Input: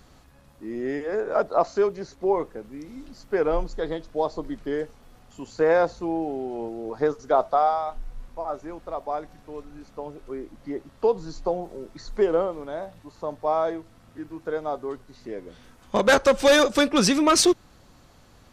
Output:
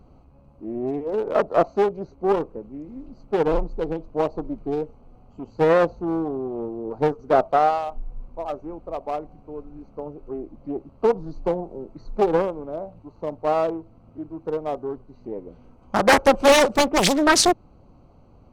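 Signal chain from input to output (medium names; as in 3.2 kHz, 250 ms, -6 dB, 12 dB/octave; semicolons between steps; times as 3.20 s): local Wiener filter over 25 samples; loudspeaker Doppler distortion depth 0.95 ms; trim +3 dB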